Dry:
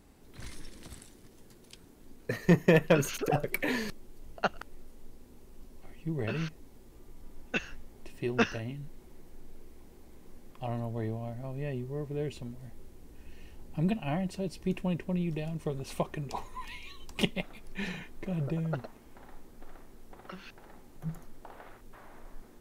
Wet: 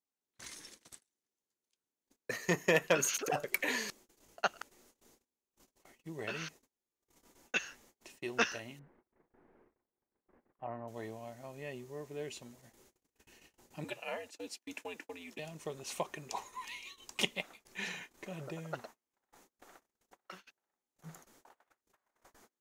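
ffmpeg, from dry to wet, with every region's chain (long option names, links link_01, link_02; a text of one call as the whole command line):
ffmpeg -i in.wav -filter_complex "[0:a]asettb=1/sr,asplit=3[link_01][link_02][link_03];[link_01]atrim=end=8.794[link_04];[link_02]atrim=start=8.79:end=10.88,asetpts=PTS-STARTPTS,afade=type=in:duration=0.004:curve=qsin,afade=type=out:start_time=2.086:duration=0.004:curve=qsin,lowpass=frequency=1800:width=0.5412,lowpass=frequency=1800:width=1.3066,acompressor=mode=upward:threshold=-44dB:ratio=2.5:attack=3.2:release=140:knee=2.83:detection=peak[link_05];[link_03]atrim=start=10.876[link_06];[link_04][link_05]acrossfade=duration=0.004:curve1=hsin:curve2=qsin[link_07];[link_07][link_06]acrossfade=duration=0.004:curve1=qsin:curve2=hsin,asettb=1/sr,asplit=3[link_08][link_09][link_10];[link_08]atrim=end=13.844[link_11];[link_09]atrim=start=13.84:end=15.39,asetpts=PTS-STARTPTS,afade=type=in:duration=0.004:curve=qsin,afade=type=out:start_time=1.546:duration=0.004:curve=qsin,highpass=frequency=340:width=0.5412,highpass=frequency=340:width=1.3066,afreqshift=-94[link_12];[link_10]atrim=start=15.386[link_13];[link_11][link_12]acrossfade=duration=0.004:curve1=hsin:curve2=qsin[link_14];[link_14][link_13]acrossfade=duration=0.004:curve1=qsin:curve2=hsin,agate=range=-32dB:threshold=-44dB:ratio=16:detection=peak,highpass=frequency=800:poles=1,equalizer=frequency=6600:width=2.5:gain=7.5" out.wav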